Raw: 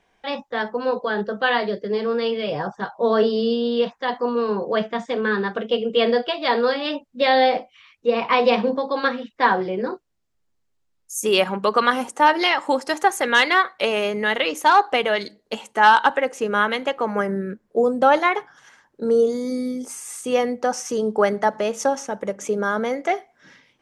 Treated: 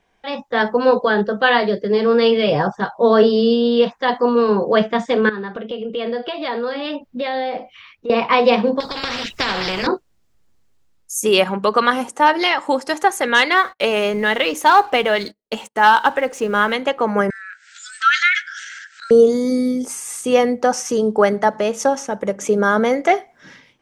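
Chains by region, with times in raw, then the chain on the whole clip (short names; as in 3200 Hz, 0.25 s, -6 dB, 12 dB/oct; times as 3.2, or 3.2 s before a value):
5.29–8.1 compressor 3:1, threshold -36 dBFS + bell 8100 Hz -10.5 dB 1.1 oct
8.8–9.87 compressor, threshold -20 dBFS + spectral compressor 4:1
13.57–16.73 G.711 law mismatch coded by mu + gate -40 dBFS, range -35 dB
17.3–19.11 brick-wall FIR band-pass 1300–8400 Hz + transient shaper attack +2 dB, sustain +9 dB + upward compressor, threshold -31 dBFS
whole clip: low shelf 190 Hz +3.5 dB; AGC; gain -1 dB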